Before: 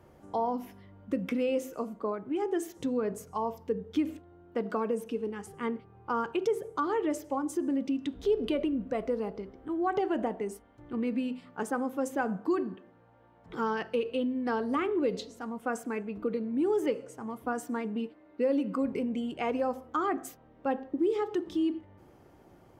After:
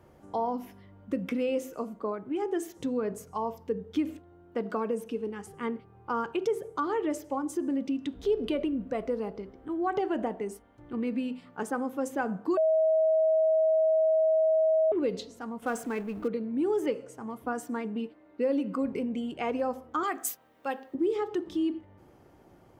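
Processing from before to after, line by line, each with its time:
0:12.57–0:14.92: beep over 637 Hz −20.5 dBFS
0:15.62–0:16.28: mu-law and A-law mismatch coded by mu
0:20.03–0:20.95: spectral tilt +4 dB per octave

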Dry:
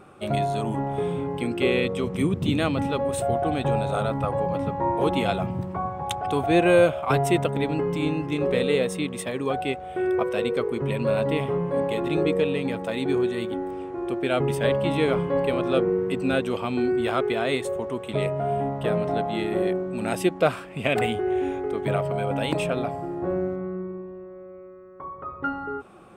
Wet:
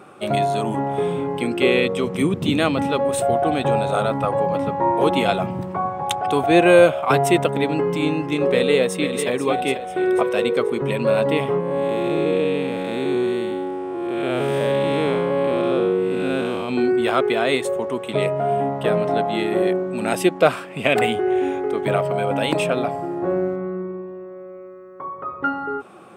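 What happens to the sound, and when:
0:08.50–0:09.28: delay throw 490 ms, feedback 40%, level −8.5 dB
0:11.60–0:16.69: spectrum smeared in time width 258 ms
whole clip: high-pass filter 100 Hz; low-shelf EQ 140 Hz −8.5 dB; level +6 dB

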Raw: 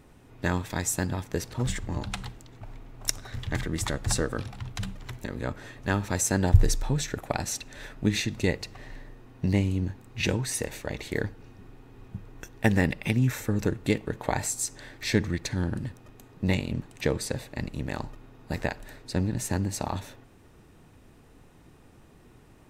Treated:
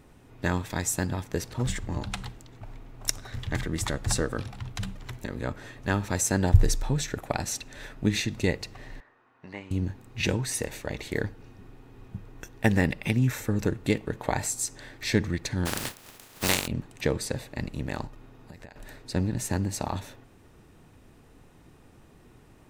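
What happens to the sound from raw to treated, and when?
0:09.00–0:09.71: resonant band-pass 1,300 Hz, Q 1.5
0:15.65–0:16.66: compressing power law on the bin magnitudes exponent 0.3
0:18.07–0:18.76: downward compressor 10 to 1, threshold −41 dBFS

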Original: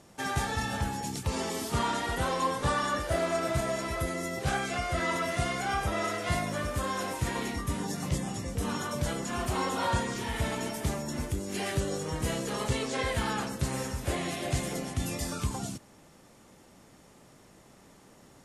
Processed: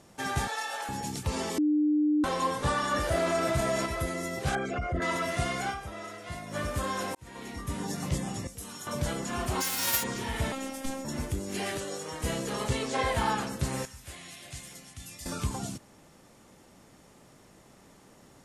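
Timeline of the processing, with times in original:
0:00.48–0:00.89: high-pass filter 500 Hz 24 dB per octave
0:01.58–0:02.24: beep over 300 Hz −21.5 dBFS
0:02.91–0:03.86: envelope flattener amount 50%
0:04.55–0:05.02: spectral envelope exaggerated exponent 2
0:05.69–0:06.56: duck −10 dB, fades 0.36 s exponential
0:07.15–0:07.90: fade in
0:08.47–0:08.87: first-order pre-emphasis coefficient 0.8
0:09.60–0:10.02: spectral envelope flattened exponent 0.1
0:10.52–0:11.05: phases set to zero 268 Hz
0:11.77–0:12.24: high-pass filter 510 Hz 6 dB per octave
0:12.94–0:13.35: parametric band 850 Hz +7.5 dB 0.86 octaves
0:13.85–0:15.26: guitar amp tone stack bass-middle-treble 5-5-5

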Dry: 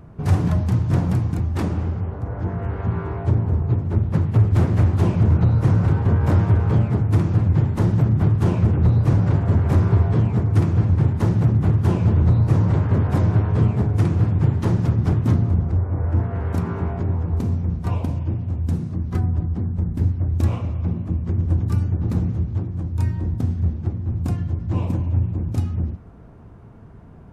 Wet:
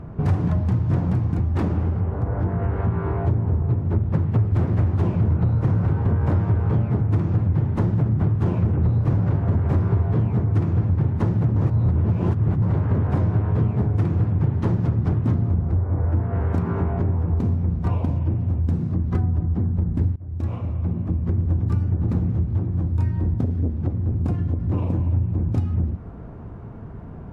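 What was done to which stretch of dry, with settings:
0:11.56–0:12.62: reverse
0:20.16–0:21.64: fade in linear, from −22.5 dB
0:23.44–0:24.96: saturating transformer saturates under 200 Hz
whole clip: downward compressor 3 to 1, threshold −27 dBFS; low-pass filter 1,800 Hz 6 dB per octave; level +7 dB

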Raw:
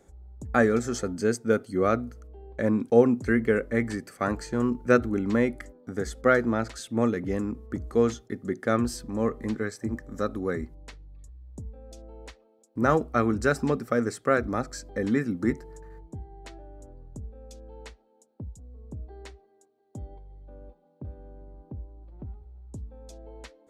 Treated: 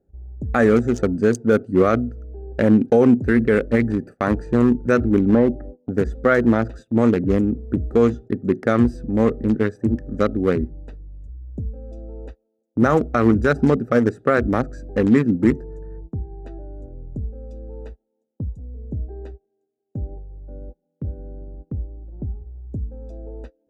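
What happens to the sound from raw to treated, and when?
0:05.29–0:05.91: low-pass with resonance 870 Hz, resonance Q 1.9
whole clip: adaptive Wiener filter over 41 samples; noise gate −47 dBFS, range −18 dB; boost into a limiter +16 dB; level −4.5 dB

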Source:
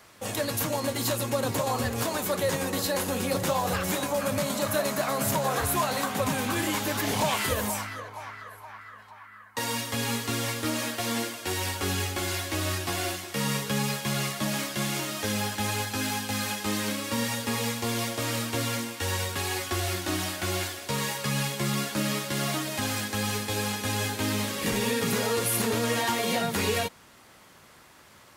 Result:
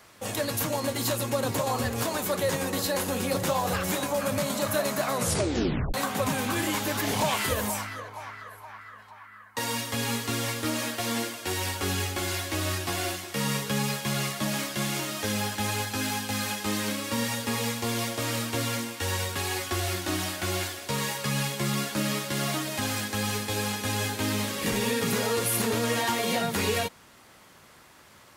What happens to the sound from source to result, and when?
0:05.13: tape stop 0.81 s

